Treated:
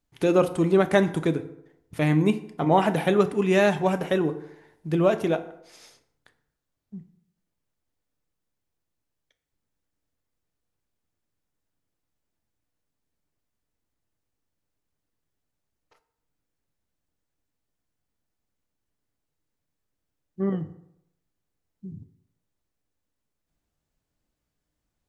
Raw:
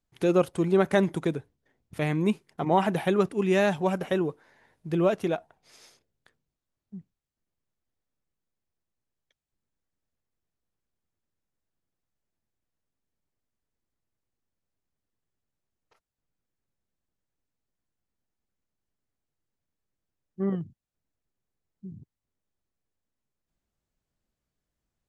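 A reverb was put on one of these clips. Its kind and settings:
feedback delay network reverb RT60 0.78 s, low-frequency decay 0.9×, high-frequency decay 0.6×, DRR 9 dB
level +3 dB

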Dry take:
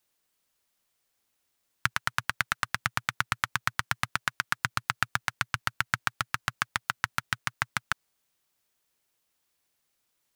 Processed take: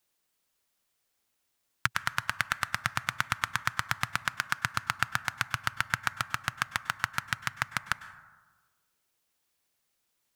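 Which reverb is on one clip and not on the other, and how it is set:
dense smooth reverb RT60 1.3 s, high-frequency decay 0.35×, pre-delay 90 ms, DRR 14 dB
level −1 dB

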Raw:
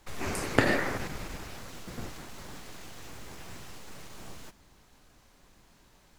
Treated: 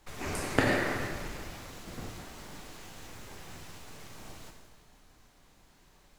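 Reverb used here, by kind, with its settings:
dense smooth reverb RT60 1.6 s, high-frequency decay 0.95×, DRR 2.5 dB
level −3 dB

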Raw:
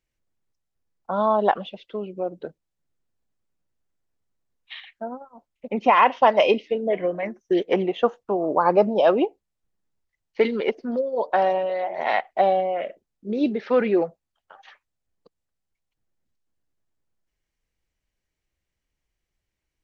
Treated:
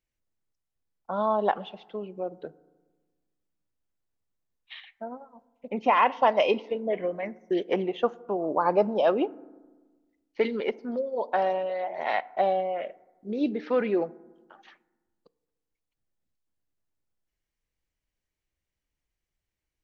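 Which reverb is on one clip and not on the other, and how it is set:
feedback delay network reverb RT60 1.3 s, low-frequency decay 1.3×, high-frequency decay 0.35×, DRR 19.5 dB
level −5 dB

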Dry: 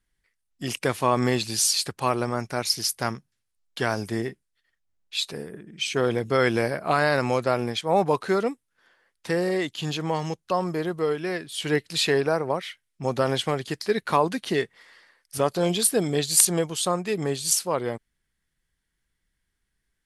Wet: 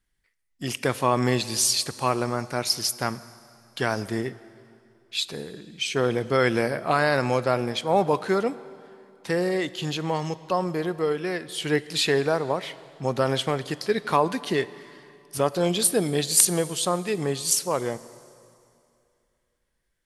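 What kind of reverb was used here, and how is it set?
dense smooth reverb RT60 2.6 s, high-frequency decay 0.9×, DRR 16 dB

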